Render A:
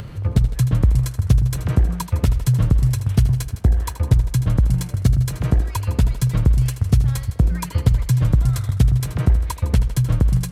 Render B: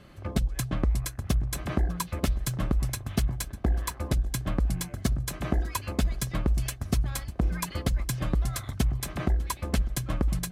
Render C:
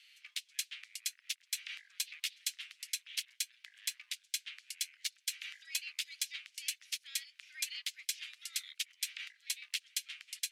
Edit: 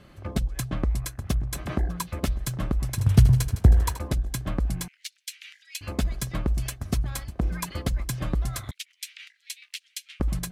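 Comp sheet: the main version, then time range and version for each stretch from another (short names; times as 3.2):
B
2.98–3.99 from A
4.88–5.81 from C
8.71–10.2 from C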